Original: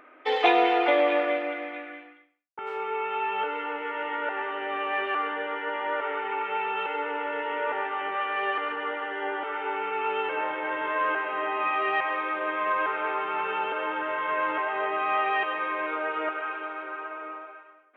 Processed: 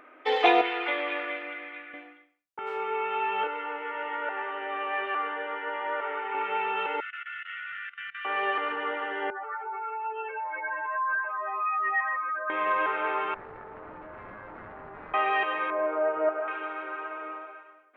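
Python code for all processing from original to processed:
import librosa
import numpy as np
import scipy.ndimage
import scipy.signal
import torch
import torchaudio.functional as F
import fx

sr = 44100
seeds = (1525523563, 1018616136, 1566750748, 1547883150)

y = fx.chain(x, sr, fx.bandpass_edges(low_hz=450.0, high_hz=3600.0),
    fx.peak_eq(hz=660.0, db=-13.0, octaves=0.98), at=(0.61, 1.94))
y = fx.chain(y, sr, fx.highpass(hz=500.0, slope=6),
    fx.high_shelf(hz=3800.0, db=-10.0), at=(3.47, 6.35))
y = fx.chain(y, sr, fx.brickwall_bandstop(low_hz=160.0, high_hz=1200.0),
    fx.level_steps(step_db=19), at=(7.0, 8.25))
y = fx.chain(y, sr, fx.spec_expand(power=2.6),
    fx.highpass(hz=1200.0, slope=6),
    fx.dynamic_eq(hz=1700.0, q=1.3, threshold_db=-40.0, ratio=4.0, max_db=3), at=(9.3, 12.5))
y = fx.chain(y, sr, fx.self_delay(depth_ms=0.74),
    fx.lowpass(hz=1300.0, slope=24),
    fx.level_steps(step_db=22), at=(13.34, 15.14))
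y = fx.chain(y, sr, fx.lowpass(hz=1200.0, slope=12),
    fx.peak_eq(hz=640.0, db=10.0, octaves=0.26), at=(15.7, 16.48))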